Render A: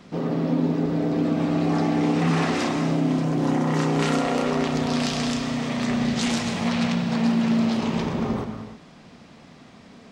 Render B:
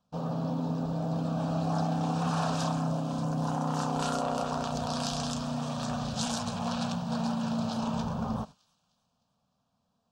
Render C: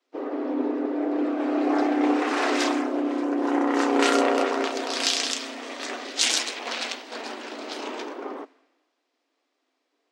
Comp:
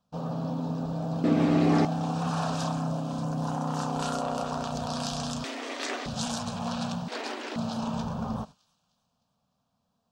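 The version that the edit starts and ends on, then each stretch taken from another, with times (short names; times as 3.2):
B
1.24–1.85 from A
5.44–6.06 from C
7.08–7.56 from C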